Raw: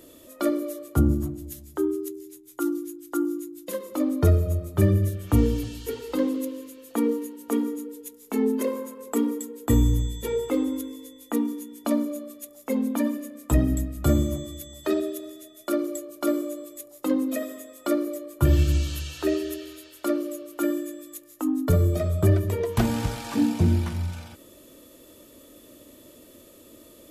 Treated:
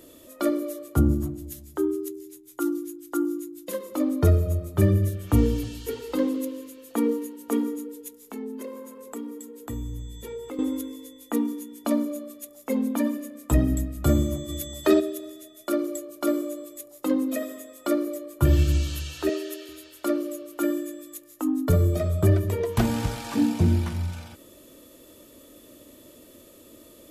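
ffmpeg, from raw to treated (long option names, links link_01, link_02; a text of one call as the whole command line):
ffmpeg -i in.wav -filter_complex "[0:a]asettb=1/sr,asplit=3[link_01][link_02][link_03];[link_01]atrim=end=8.214[link_04];[link_02]atrim=start=8.21:end=10.59,asetpts=PTS-STARTPTS,afade=type=in:duration=0.004:curve=qsin,afade=type=out:start_time=2.376:duration=0.004:curve=qsin,acompressor=threshold=-41dB:ratio=2:attack=3.2:release=140:knee=1:detection=peak[link_05];[link_03]atrim=start=10.586[link_06];[link_04][link_05]acrossfade=duration=0.004:curve1=hsin:curve2=qsin[link_07];[link_07][link_06]acrossfade=duration=0.004:curve1=qsin:curve2=hsin,asplit=3[link_08][link_09][link_10];[link_08]afade=type=out:start_time=14.48:duration=0.02[link_11];[link_09]acontrast=56,afade=type=in:start_time=14.48:duration=0.02,afade=type=out:start_time=14.99:duration=0.02[link_12];[link_10]afade=type=in:start_time=14.99:duration=0.02[link_13];[link_11][link_12][link_13]amix=inputs=3:normalize=0,asettb=1/sr,asplit=3[link_14][link_15][link_16];[link_14]atrim=end=19.294[link_17];[link_15]atrim=start=19.29:end=19.69,asetpts=PTS-STARTPTS,afade=type=in:duration=0.004:curve=qsin,afade=type=out:start_time=0.396:duration=0.004:curve=qsin,highpass=380[link_18];[link_16]atrim=start=19.686[link_19];[link_17][link_18]acrossfade=duration=0.004:curve1=hsin:curve2=qsin[link_20];[link_20][link_19]acrossfade=duration=0.004:curve1=qsin:curve2=hsin" out.wav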